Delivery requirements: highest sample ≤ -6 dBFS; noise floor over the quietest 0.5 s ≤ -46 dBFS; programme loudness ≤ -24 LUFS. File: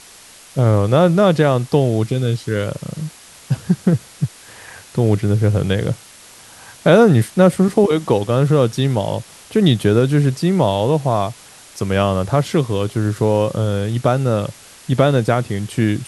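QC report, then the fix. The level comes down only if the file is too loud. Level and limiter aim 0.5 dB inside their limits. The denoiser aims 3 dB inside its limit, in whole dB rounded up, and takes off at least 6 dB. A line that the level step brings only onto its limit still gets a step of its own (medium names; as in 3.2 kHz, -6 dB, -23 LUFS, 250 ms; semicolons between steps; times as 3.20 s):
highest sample -2.0 dBFS: fail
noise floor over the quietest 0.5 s -43 dBFS: fail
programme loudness -17.0 LUFS: fail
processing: trim -7.5 dB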